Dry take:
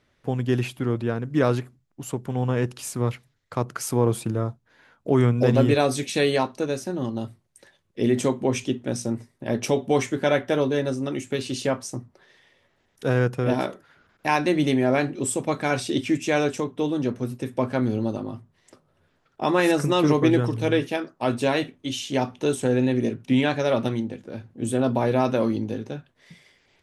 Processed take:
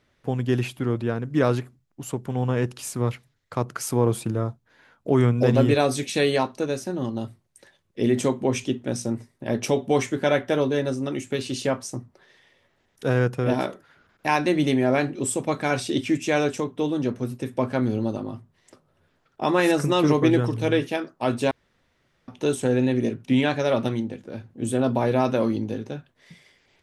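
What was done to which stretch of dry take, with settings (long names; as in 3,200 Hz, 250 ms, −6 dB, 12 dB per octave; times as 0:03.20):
0:21.51–0:22.28: fill with room tone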